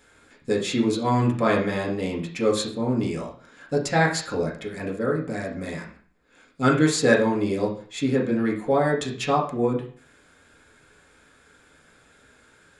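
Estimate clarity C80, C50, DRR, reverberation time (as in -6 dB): 12.5 dB, 8.0 dB, -2.5 dB, 0.45 s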